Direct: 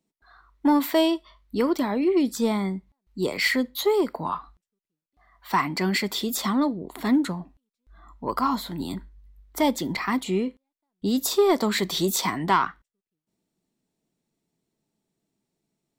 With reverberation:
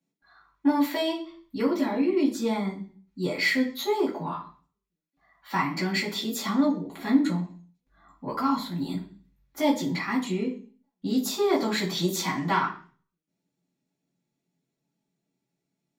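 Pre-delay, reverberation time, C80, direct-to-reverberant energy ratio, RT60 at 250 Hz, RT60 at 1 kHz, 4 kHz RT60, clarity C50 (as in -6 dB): 3 ms, 0.40 s, 14.5 dB, -6.0 dB, 0.60 s, 0.35 s, 0.50 s, 10.5 dB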